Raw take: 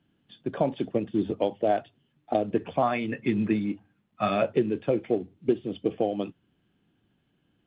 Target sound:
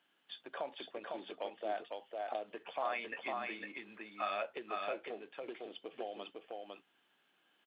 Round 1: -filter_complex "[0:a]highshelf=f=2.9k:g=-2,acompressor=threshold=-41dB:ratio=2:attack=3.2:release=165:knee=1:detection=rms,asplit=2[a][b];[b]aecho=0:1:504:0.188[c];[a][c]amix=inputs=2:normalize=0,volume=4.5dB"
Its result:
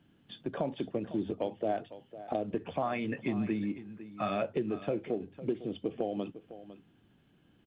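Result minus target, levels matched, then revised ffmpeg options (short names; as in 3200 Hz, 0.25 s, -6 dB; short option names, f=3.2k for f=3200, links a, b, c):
echo-to-direct -11.5 dB; 1000 Hz band -5.5 dB
-filter_complex "[0:a]highshelf=f=2.9k:g=-2,acompressor=threshold=-41dB:ratio=2:attack=3.2:release=165:knee=1:detection=rms,highpass=850,asplit=2[a][b];[b]aecho=0:1:504:0.708[c];[a][c]amix=inputs=2:normalize=0,volume=4.5dB"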